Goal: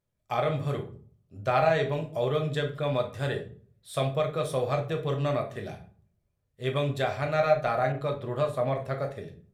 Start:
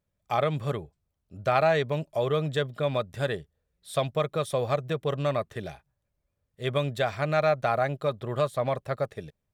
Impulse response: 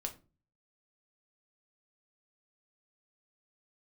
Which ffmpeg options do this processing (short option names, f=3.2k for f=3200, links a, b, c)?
-filter_complex "[1:a]atrim=start_sample=2205,asetrate=29988,aresample=44100[a];[0:a][a]afir=irnorm=-1:irlink=0,asettb=1/sr,asplit=3[b][c][d];[b]atrim=end=7.924[e];[c]atrim=start=7.92:end=8.8,asetpts=PTS-STARTPTS,afade=t=in:d=0.004:c=qsin,afade=t=out:st=0.876:d=0.004:c=qsin,adynamicequalizer=threshold=0.00562:dfrequency=3200:dqfactor=0.7:tfrequency=3200:tqfactor=0.7:attack=5:release=100:ratio=0.375:range=2.5:mode=cutabove:tftype=highshelf[f];[d]atrim=start=8.796[g];[e][f]acrossfade=d=0.004:c1=hsin:c2=qsin[h];[h][g]acrossfade=d=0.004:c1=qsin:c2=hsin,volume=-2.5dB"